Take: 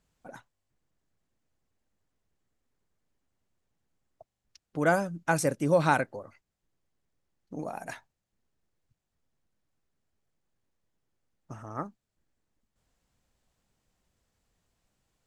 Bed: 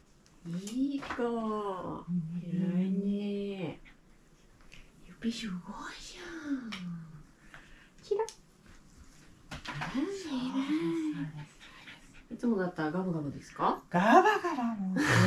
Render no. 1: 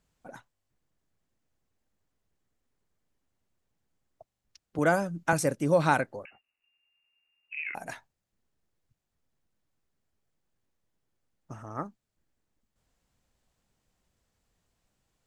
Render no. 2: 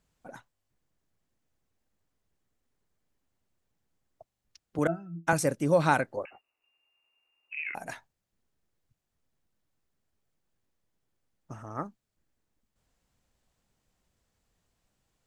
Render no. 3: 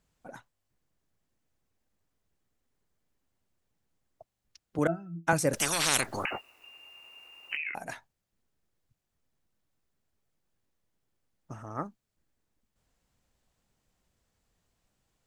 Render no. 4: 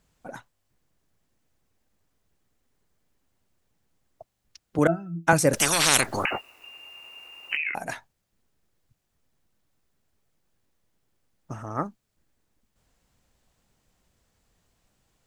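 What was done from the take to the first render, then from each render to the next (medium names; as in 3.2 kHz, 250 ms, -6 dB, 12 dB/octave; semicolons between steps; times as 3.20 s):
4.78–5.33 s: three bands compressed up and down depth 40%; 6.25–7.75 s: frequency inversion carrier 2.8 kHz
4.87–5.27 s: pitch-class resonator E, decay 0.18 s; 6.17–7.59 s: high-order bell 610 Hz +8.5 dB 2.3 oct
5.53–7.57 s: spectrum-flattening compressor 10:1
trim +6.5 dB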